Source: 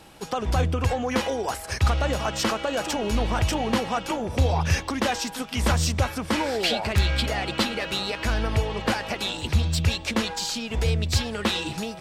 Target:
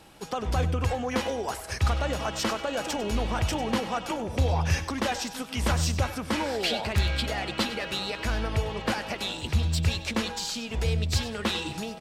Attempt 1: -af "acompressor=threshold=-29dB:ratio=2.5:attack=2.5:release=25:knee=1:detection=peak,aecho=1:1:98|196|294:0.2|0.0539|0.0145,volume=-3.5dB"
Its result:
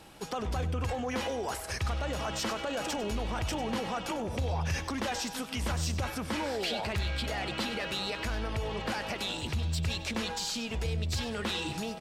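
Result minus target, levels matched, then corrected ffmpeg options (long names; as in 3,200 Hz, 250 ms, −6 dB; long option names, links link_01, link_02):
downward compressor: peak gain reduction +10 dB
-af "aecho=1:1:98|196|294:0.2|0.0539|0.0145,volume=-3.5dB"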